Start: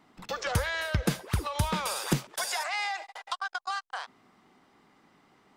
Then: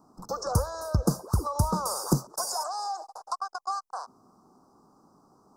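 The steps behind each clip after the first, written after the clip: elliptic band-stop 1200–5200 Hz, stop band 50 dB; gain +3.5 dB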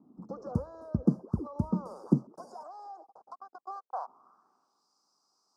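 band-pass sweep 240 Hz -> 4700 Hz, 3.52–4.88; gain +5 dB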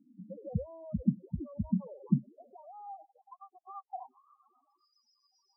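reverse; upward compressor, threshold -51 dBFS; reverse; rotary speaker horn 0.9 Hz, later 7.5 Hz, at 2.77; loudest bins only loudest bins 4; gain +1.5 dB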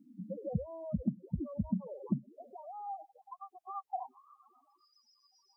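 compressor, threshold -33 dBFS, peak gain reduction 13 dB; gain +4 dB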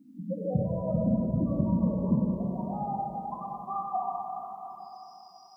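plate-style reverb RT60 3.8 s, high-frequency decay 0.95×, DRR -5 dB; gain +4 dB

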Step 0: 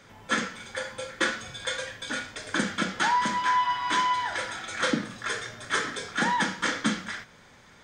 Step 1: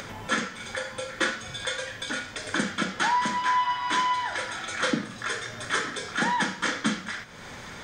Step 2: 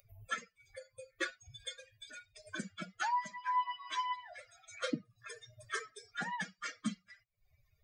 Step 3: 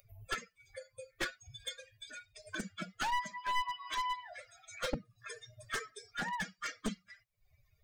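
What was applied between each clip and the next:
upward compressor, threshold -28 dBFS
per-bin expansion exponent 3; gain -5.5 dB
one-sided fold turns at -33.5 dBFS; gain +2 dB

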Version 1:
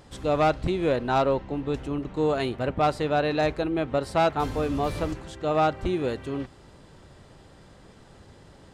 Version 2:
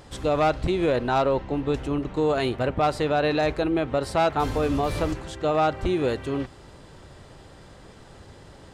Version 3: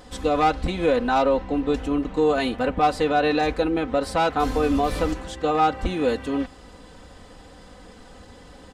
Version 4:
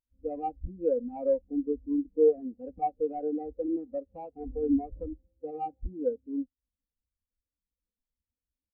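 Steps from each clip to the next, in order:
limiter -19 dBFS, peak gain reduction 4 dB; bell 200 Hz -3 dB 0.97 oct; gain +4.5 dB
comb 4 ms, depth 78%
median filter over 41 samples; spectral expander 2.5:1; gain -1 dB

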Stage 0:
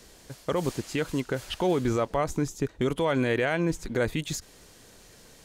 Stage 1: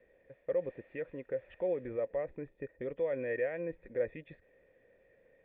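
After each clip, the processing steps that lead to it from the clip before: vocal tract filter e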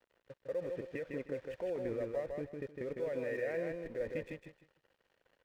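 in parallel at +0.5 dB: negative-ratio compressor -42 dBFS, ratio -1; on the sum: crossover distortion -52 dBFS; feedback echo 0.155 s, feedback 23%, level -4 dB; gain -6 dB

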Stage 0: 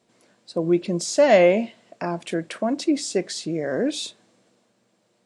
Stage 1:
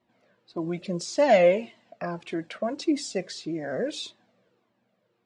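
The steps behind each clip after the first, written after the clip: low-pass opened by the level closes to 2800 Hz, open at -16 dBFS; cascading flanger falling 1.7 Hz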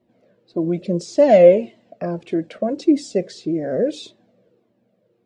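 resonant low shelf 710 Hz +9 dB, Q 1.5; gain -1 dB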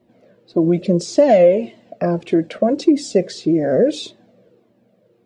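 compressor 4:1, threshold -16 dBFS, peak gain reduction 9.5 dB; gain +6.5 dB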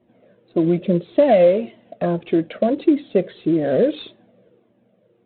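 gain -2 dB; IMA ADPCM 32 kbps 8000 Hz

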